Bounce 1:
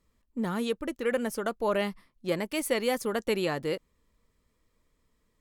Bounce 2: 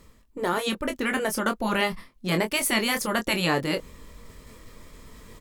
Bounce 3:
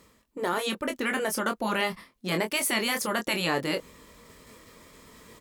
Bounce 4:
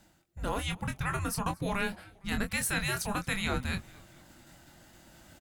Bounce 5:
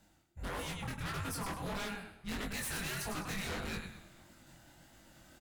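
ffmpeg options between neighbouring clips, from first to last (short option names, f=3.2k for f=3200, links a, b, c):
-filter_complex "[0:a]afftfilt=real='re*lt(hypot(re,im),0.224)':imag='im*lt(hypot(re,im),0.224)':win_size=1024:overlap=0.75,areverse,acompressor=mode=upward:threshold=-39dB:ratio=2.5,areverse,asplit=2[a][b];[b]adelay=23,volume=-7.5dB[c];[a][c]amix=inputs=2:normalize=0,volume=8.5dB"
-filter_complex "[0:a]highpass=f=210:p=1,asplit=2[a][b];[b]alimiter=limit=-20dB:level=0:latency=1:release=31,volume=-2.5dB[c];[a][c]amix=inputs=2:normalize=0,volume=-5dB"
-filter_complex "[0:a]afreqshift=-390,asplit=4[a][b][c][d];[b]adelay=229,afreqshift=-110,volume=-23.5dB[e];[c]adelay=458,afreqshift=-220,volume=-29.2dB[f];[d]adelay=687,afreqshift=-330,volume=-34.9dB[g];[a][e][f][g]amix=inputs=4:normalize=0,volume=-4dB"
-af "aecho=1:1:102|204|306|408:0.398|0.135|0.046|0.0156,aeval=exprs='0.0355*(abs(mod(val(0)/0.0355+3,4)-2)-1)':c=same,flanger=delay=18.5:depth=7.8:speed=1.6,volume=-1.5dB"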